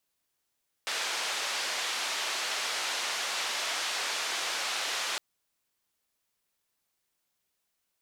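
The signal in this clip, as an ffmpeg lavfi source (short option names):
-f lavfi -i "anoisesrc=c=white:d=4.31:r=44100:seed=1,highpass=f=600,lowpass=f=5000,volume=-21dB"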